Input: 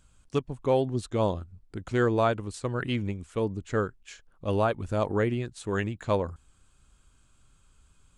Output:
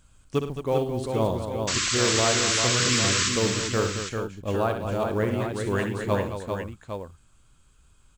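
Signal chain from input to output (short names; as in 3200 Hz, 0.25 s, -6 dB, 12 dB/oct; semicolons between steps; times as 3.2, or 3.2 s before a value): vocal rider within 3 dB 0.5 s; short-mantissa float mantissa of 4-bit; painted sound noise, 1.67–3.29, 1000–8100 Hz -27 dBFS; on a send: tapped delay 63/106/218/394/439/806 ms -8/-14/-9.5/-5.5/-19/-8.5 dB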